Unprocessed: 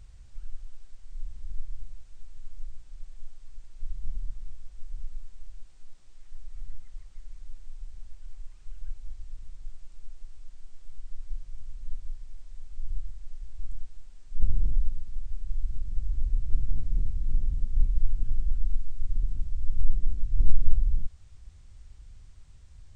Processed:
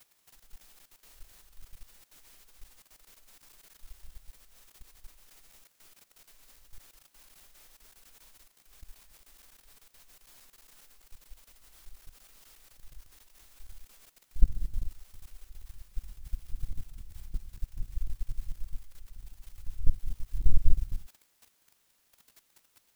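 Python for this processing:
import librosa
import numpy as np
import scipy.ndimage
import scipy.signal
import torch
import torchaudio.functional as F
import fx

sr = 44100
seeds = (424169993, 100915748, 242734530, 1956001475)

y = fx.power_curve(x, sr, exponent=2.0)
y = fx.quant_dither(y, sr, seeds[0], bits=10, dither='triangular')
y = fx.level_steps(y, sr, step_db=15)
y = F.gain(torch.from_numpy(y), 4.5).numpy()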